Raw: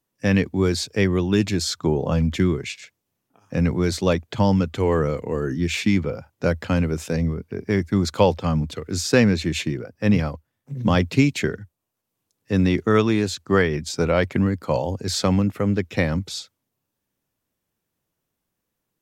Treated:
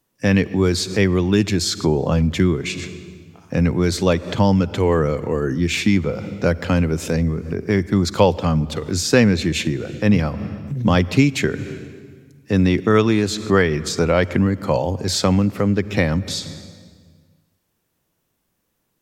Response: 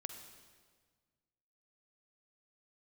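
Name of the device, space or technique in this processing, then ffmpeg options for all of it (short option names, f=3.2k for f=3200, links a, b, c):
ducked reverb: -filter_complex "[0:a]asplit=3[a][b][c];[1:a]atrim=start_sample=2205[d];[b][d]afir=irnorm=-1:irlink=0[e];[c]apad=whole_len=838380[f];[e][f]sidechaincompress=threshold=-37dB:ratio=5:attack=47:release=123,volume=4dB[g];[a][g]amix=inputs=2:normalize=0,volume=1.5dB"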